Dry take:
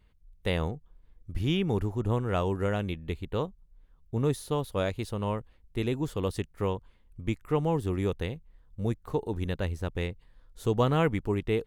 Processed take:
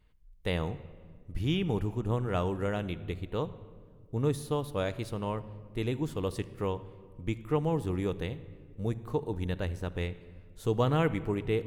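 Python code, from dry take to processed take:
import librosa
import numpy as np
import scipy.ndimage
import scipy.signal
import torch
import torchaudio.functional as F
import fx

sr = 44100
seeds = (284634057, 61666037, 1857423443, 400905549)

y = fx.room_shoebox(x, sr, seeds[0], volume_m3=2700.0, walls='mixed', distance_m=0.47)
y = y * librosa.db_to_amplitude(-2.5)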